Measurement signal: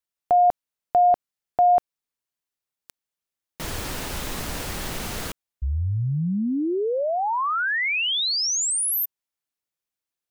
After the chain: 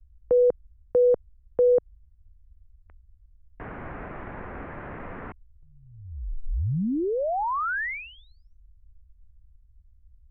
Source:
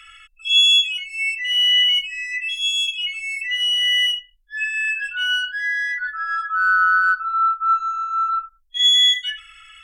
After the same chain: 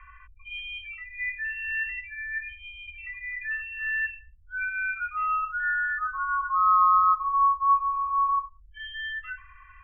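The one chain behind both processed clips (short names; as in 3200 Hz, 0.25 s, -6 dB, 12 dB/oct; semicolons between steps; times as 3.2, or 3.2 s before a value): air absorption 310 m; band noise 130–220 Hz -46 dBFS; mistuned SSB -220 Hz 200–2300 Hz; gain -1 dB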